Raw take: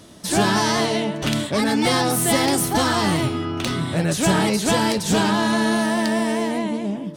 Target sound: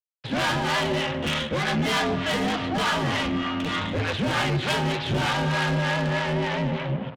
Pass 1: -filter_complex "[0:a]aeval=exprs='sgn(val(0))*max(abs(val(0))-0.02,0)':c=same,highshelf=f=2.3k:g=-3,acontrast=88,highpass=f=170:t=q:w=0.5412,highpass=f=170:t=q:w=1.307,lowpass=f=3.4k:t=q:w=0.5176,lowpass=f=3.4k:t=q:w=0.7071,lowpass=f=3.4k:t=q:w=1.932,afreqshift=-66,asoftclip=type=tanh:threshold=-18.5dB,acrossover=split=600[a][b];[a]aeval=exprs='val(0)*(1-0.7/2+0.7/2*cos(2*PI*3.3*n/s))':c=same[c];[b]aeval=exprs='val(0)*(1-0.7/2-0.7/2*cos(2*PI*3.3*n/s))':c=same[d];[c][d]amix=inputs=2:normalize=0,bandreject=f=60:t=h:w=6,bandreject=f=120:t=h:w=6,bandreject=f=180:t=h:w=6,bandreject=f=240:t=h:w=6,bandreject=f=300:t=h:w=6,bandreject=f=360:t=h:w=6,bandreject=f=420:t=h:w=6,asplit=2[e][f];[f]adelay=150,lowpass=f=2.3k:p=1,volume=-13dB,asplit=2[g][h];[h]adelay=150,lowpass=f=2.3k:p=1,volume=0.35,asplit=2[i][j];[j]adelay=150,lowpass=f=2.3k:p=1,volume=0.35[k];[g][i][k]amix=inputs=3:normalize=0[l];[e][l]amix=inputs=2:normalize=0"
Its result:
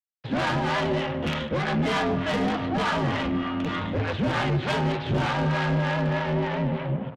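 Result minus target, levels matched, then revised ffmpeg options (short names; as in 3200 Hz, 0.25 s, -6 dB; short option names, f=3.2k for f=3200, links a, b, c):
4000 Hz band -5.0 dB
-filter_complex "[0:a]aeval=exprs='sgn(val(0))*max(abs(val(0))-0.02,0)':c=same,highshelf=f=2.3k:g=9,acontrast=88,highpass=f=170:t=q:w=0.5412,highpass=f=170:t=q:w=1.307,lowpass=f=3.4k:t=q:w=0.5176,lowpass=f=3.4k:t=q:w=0.7071,lowpass=f=3.4k:t=q:w=1.932,afreqshift=-66,asoftclip=type=tanh:threshold=-18.5dB,acrossover=split=600[a][b];[a]aeval=exprs='val(0)*(1-0.7/2+0.7/2*cos(2*PI*3.3*n/s))':c=same[c];[b]aeval=exprs='val(0)*(1-0.7/2-0.7/2*cos(2*PI*3.3*n/s))':c=same[d];[c][d]amix=inputs=2:normalize=0,bandreject=f=60:t=h:w=6,bandreject=f=120:t=h:w=6,bandreject=f=180:t=h:w=6,bandreject=f=240:t=h:w=6,bandreject=f=300:t=h:w=6,bandreject=f=360:t=h:w=6,bandreject=f=420:t=h:w=6,asplit=2[e][f];[f]adelay=150,lowpass=f=2.3k:p=1,volume=-13dB,asplit=2[g][h];[h]adelay=150,lowpass=f=2.3k:p=1,volume=0.35,asplit=2[i][j];[j]adelay=150,lowpass=f=2.3k:p=1,volume=0.35[k];[g][i][k]amix=inputs=3:normalize=0[l];[e][l]amix=inputs=2:normalize=0"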